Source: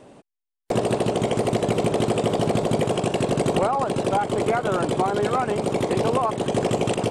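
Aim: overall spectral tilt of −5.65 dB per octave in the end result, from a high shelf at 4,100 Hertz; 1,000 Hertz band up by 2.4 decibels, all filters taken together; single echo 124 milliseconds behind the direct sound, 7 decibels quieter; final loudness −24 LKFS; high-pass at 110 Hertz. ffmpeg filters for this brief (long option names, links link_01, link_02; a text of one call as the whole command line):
ffmpeg -i in.wav -af "highpass=110,equalizer=frequency=1000:width_type=o:gain=4,highshelf=frequency=4100:gain=-9,aecho=1:1:124:0.447,volume=-2.5dB" out.wav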